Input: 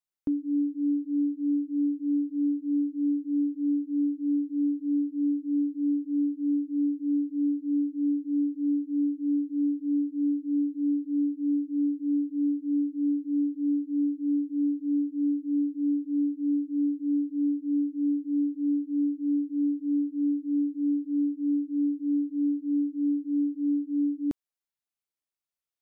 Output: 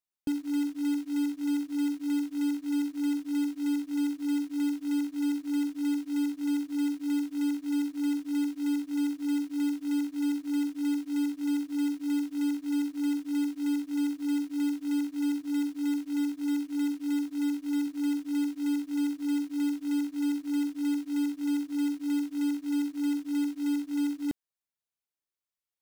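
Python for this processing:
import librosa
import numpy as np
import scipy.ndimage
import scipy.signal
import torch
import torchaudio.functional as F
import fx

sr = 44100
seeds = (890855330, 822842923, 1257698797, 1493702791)

y = fx.highpass(x, sr, hz=69.0, slope=6, at=(15.41, 17.87))
y = fx.quant_float(y, sr, bits=2)
y = y * librosa.db_to_amplitude(-2.5)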